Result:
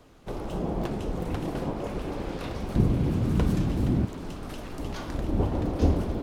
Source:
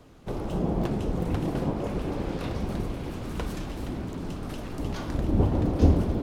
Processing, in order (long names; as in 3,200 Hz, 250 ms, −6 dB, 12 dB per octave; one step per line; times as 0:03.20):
parametric band 130 Hz −4.5 dB 2.8 octaves, from 0:02.76 +12.5 dB, from 0:04.05 −4.5 dB